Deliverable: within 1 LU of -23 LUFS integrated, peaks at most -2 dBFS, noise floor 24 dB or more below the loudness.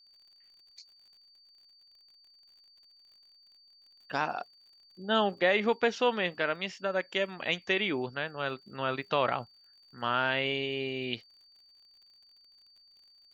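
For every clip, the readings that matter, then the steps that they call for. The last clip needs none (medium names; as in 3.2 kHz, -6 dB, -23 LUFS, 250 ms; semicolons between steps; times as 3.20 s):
tick rate 44 per s; steady tone 4.6 kHz; tone level -58 dBFS; loudness -30.5 LUFS; peak level -13.0 dBFS; loudness target -23.0 LUFS
-> de-click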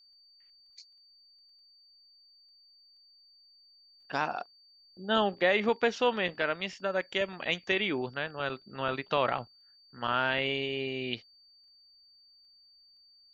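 tick rate 0.075 per s; steady tone 4.6 kHz; tone level -58 dBFS
-> band-stop 4.6 kHz, Q 30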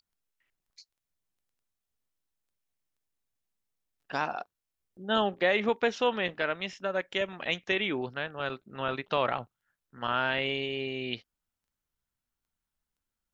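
steady tone not found; loudness -30.5 LUFS; peak level -13.0 dBFS; loudness target -23.0 LUFS
-> trim +7.5 dB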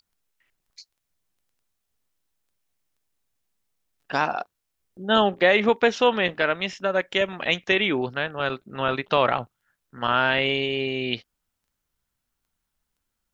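loudness -23.0 LUFS; peak level -5.5 dBFS; noise floor -80 dBFS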